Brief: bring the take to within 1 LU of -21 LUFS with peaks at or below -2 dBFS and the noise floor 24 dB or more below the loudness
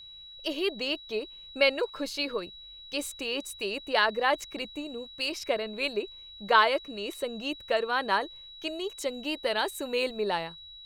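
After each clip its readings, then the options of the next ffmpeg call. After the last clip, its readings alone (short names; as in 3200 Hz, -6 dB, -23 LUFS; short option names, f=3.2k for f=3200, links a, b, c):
steady tone 3900 Hz; tone level -45 dBFS; loudness -29.5 LUFS; peak -8.5 dBFS; loudness target -21.0 LUFS
-> -af "bandreject=f=3.9k:w=30"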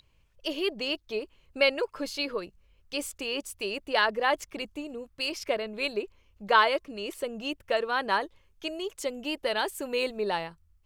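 steady tone none; loudness -30.0 LUFS; peak -9.0 dBFS; loudness target -21.0 LUFS
-> -af "volume=9dB,alimiter=limit=-2dB:level=0:latency=1"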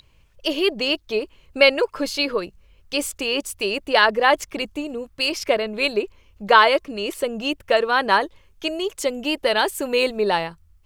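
loudness -21.0 LUFS; peak -2.0 dBFS; noise floor -56 dBFS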